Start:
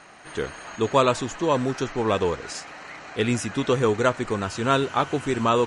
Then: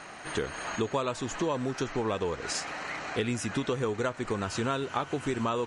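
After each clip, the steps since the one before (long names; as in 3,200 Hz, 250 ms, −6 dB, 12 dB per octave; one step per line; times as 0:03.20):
downward compressor 6 to 1, threshold −31 dBFS, peak gain reduction 16.5 dB
level +3.5 dB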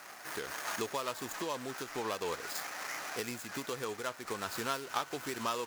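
running median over 15 samples
spectral tilt +4 dB per octave
amplitude modulation by smooth noise, depth 60%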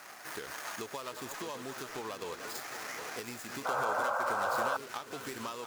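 feedback delay that plays each chunk backwards 380 ms, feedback 73%, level −11 dB
downward compressor, threshold −36 dBFS, peak gain reduction 8.5 dB
sound drawn into the spectrogram noise, 0:03.65–0:04.77, 480–1,600 Hz −32 dBFS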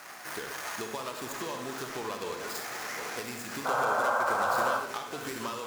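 convolution reverb RT60 0.55 s, pre-delay 44 ms, DRR 5 dB
level +3 dB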